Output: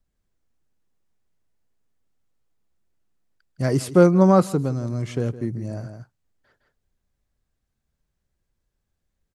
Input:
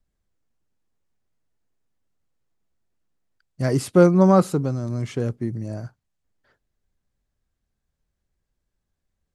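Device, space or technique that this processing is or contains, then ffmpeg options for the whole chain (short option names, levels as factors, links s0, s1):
ducked delay: -filter_complex "[0:a]asplit=3[s0][s1][s2];[s1]adelay=161,volume=0.562[s3];[s2]apad=whole_len=419165[s4];[s3][s4]sidechaincompress=threshold=0.0251:ratio=12:attack=39:release=460[s5];[s0][s5]amix=inputs=2:normalize=0"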